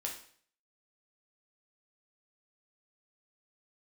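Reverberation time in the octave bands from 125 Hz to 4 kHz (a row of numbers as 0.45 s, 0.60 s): 0.55 s, 0.55 s, 0.55 s, 0.50 s, 0.55 s, 0.50 s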